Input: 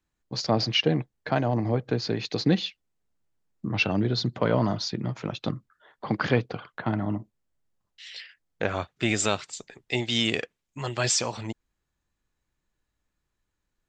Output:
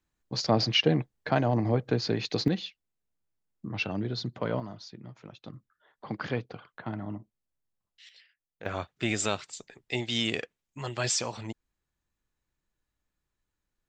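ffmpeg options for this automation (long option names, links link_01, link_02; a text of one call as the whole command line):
ffmpeg -i in.wav -af "asetnsamples=nb_out_samples=441:pad=0,asendcmd='2.48 volume volume -7dB;4.6 volume volume -15.5dB;5.54 volume volume -8.5dB;8.09 volume volume -16.5dB;8.66 volume volume -4dB',volume=-0.5dB" out.wav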